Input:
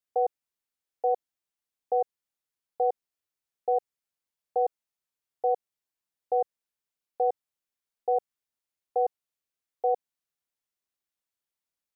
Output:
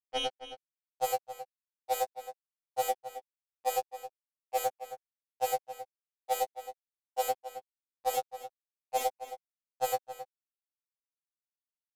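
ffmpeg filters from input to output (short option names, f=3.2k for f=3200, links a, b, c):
-filter_complex "[0:a]acrossover=split=380|450[a][b][c];[c]dynaudnorm=f=250:g=5:m=13dB[d];[a][b][d]amix=inputs=3:normalize=0,asettb=1/sr,asplit=3[e][f][g];[e]atrim=end=8.154[h];[f]atrim=start=8.15:end=9.02,asetpts=PTS-STARTPTS,afade=t=in:d=0.004:c=qsin,afade=t=out:st=0.866:d=0.004:c=qsin,lowshelf=f=260:g=-7[i];[g]atrim=start=9.016[j];[h][i]acrossfade=d=0.004:c1=hsin:c2=qsin[k];[k][j]acrossfade=d=0.004:c1=qsin:c2=hsin,asplit=2[l][m];[m]asoftclip=type=tanh:threshold=-20dB,volume=-9.5dB[n];[l][n]amix=inputs=2:normalize=0,acrusher=bits=3:mix=0:aa=0.5,equalizer=f=340:t=o:w=0.46:g=-9,alimiter=limit=-11.5dB:level=0:latency=1,asplit=2[o][p];[p]adelay=268.2,volume=-12dB,highshelf=f=4k:g=-6.04[q];[o][q]amix=inputs=2:normalize=0,afftfilt=real='re*2.45*eq(mod(b,6),0)':imag='im*2.45*eq(mod(b,6),0)':win_size=2048:overlap=0.75"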